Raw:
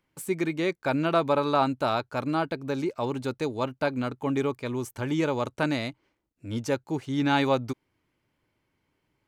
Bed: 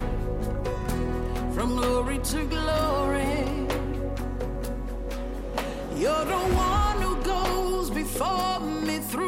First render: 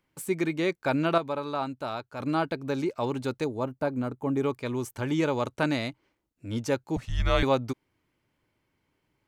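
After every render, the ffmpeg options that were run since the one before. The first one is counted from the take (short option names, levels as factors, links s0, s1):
-filter_complex "[0:a]asettb=1/sr,asplit=3[s0][s1][s2];[s0]atrim=end=3.444[s3];[s1]atrim=start=3.44:end=4.43,asetpts=PTS-STARTPTS,afade=t=in:d=0.004:c=qsin,afade=t=out:st=0.986:d=0.004:c=qsin,equalizer=f=3300:w=0.56:g=-12[s4];[s2]atrim=start=4.426[s5];[s3][s4]acrossfade=d=0.004:c1=hsin:c2=qsin[s6];[s6][s5]acrossfade=d=0.004:c1=qsin:c2=hsin,asettb=1/sr,asplit=3[s7][s8][s9];[s7]atrim=end=6.964[s10];[s8]atrim=start=6.96:end=7.43,asetpts=PTS-STARTPTS,afade=t=in:d=0.004:c=qsin,afade=t=out:st=0.466:d=0.004:c=qsin,afreqshift=-240[s11];[s9]atrim=start=7.426[s12];[s10][s11]acrossfade=d=0.004:c1=hsin:c2=qsin[s13];[s13][s12]acrossfade=d=0.004:c1=qsin:c2=hsin,asplit=3[s14][s15][s16];[s14]atrim=end=1.182[s17];[s15]atrim=start=1.178:end=2.202,asetpts=PTS-STARTPTS,volume=0.422[s18];[s16]atrim=start=2.198[s19];[s17][s18]acrossfade=d=0.004:c1=hsin:c2=hsin[s20];[s20][s19]acrossfade=d=0.004:c1=hsin:c2=hsin"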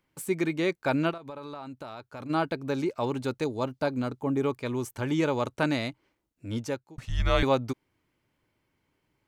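-filter_complex "[0:a]asplit=3[s0][s1][s2];[s0]afade=t=out:st=1.1:d=0.02[s3];[s1]acompressor=threshold=0.0178:ratio=16:attack=3.2:release=140:knee=1:detection=peak,afade=t=in:st=1.1:d=0.02,afade=t=out:st=2.29:d=0.02[s4];[s2]afade=t=in:st=2.29:d=0.02[s5];[s3][s4][s5]amix=inputs=3:normalize=0,asettb=1/sr,asplit=3[s6][s7][s8];[s6]atrim=end=3.454[s9];[s7]atrim=start=3.45:end=4.22,asetpts=PTS-STARTPTS,afade=t=in:d=0.004:c=qsin,afade=t=out:st=0.766:d=0.004:c=qsin,equalizer=f=4400:t=o:w=1.6:g=10[s10];[s8]atrim=start=4.216[s11];[s9][s10]acrossfade=d=0.004:c1=hsin:c2=qsin[s12];[s12][s11]acrossfade=d=0.004:c1=qsin:c2=hsin,asplit=2[s13][s14];[s13]atrim=end=6.98,asetpts=PTS-STARTPTS,afade=t=out:st=6.52:d=0.46[s15];[s14]atrim=start=6.98,asetpts=PTS-STARTPTS,afade=t=in:d=0.004:c=hsin[s16];[s15][s16]concat=n=2:v=0:a=1"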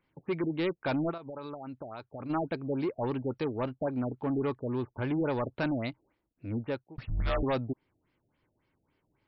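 -af "asoftclip=type=tanh:threshold=0.0596,afftfilt=real='re*lt(b*sr/1024,770*pow(5700/770,0.5+0.5*sin(2*PI*3.6*pts/sr)))':imag='im*lt(b*sr/1024,770*pow(5700/770,0.5+0.5*sin(2*PI*3.6*pts/sr)))':win_size=1024:overlap=0.75"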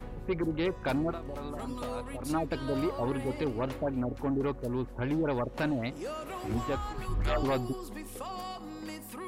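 -filter_complex "[1:a]volume=0.211[s0];[0:a][s0]amix=inputs=2:normalize=0"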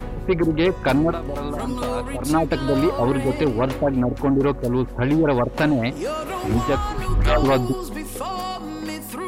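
-af "volume=3.76"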